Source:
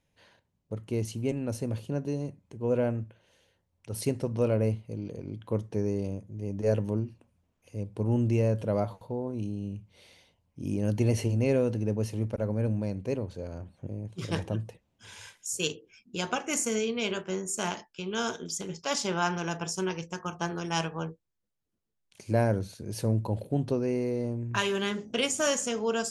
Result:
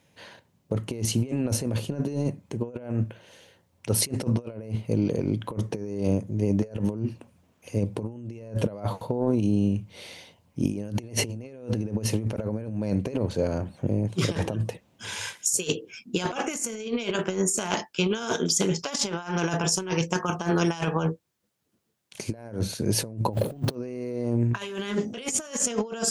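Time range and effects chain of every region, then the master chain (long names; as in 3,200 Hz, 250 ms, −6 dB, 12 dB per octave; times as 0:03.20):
0:23.33–0:23.75: mu-law and A-law mismatch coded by mu + low-shelf EQ 91 Hz +3.5 dB + bad sample-rate conversion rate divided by 2×, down none, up hold
whole clip: high-pass filter 110 Hz 12 dB per octave; compressor whose output falls as the input rises −35 dBFS, ratio −0.5; level +8.5 dB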